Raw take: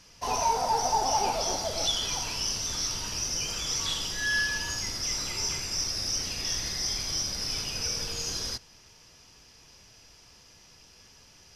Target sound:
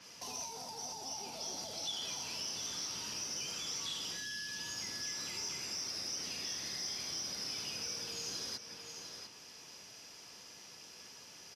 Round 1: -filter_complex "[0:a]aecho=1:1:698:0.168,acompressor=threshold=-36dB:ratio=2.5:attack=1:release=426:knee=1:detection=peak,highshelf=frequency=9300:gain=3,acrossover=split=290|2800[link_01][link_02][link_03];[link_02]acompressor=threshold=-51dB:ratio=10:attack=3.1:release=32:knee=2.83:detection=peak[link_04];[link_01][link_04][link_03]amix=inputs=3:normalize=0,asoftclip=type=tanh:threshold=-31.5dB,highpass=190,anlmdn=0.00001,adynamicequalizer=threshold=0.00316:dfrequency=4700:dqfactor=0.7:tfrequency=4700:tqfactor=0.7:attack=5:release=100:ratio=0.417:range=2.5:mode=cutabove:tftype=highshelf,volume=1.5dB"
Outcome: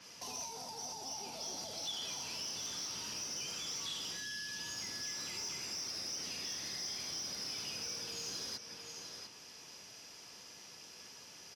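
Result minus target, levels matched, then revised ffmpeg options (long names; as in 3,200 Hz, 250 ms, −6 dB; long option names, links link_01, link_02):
soft clipping: distortion +12 dB
-filter_complex "[0:a]aecho=1:1:698:0.168,acompressor=threshold=-36dB:ratio=2.5:attack=1:release=426:knee=1:detection=peak,highshelf=frequency=9300:gain=3,acrossover=split=290|2800[link_01][link_02][link_03];[link_02]acompressor=threshold=-51dB:ratio=10:attack=3.1:release=32:knee=2.83:detection=peak[link_04];[link_01][link_04][link_03]amix=inputs=3:normalize=0,asoftclip=type=tanh:threshold=-24.5dB,highpass=190,anlmdn=0.00001,adynamicequalizer=threshold=0.00316:dfrequency=4700:dqfactor=0.7:tfrequency=4700:tqfactor=0.7:attack=5:release=100:ratio=0.417:range=2.5:mode=cutabove:tftype=highshelf,volume=1.5dB"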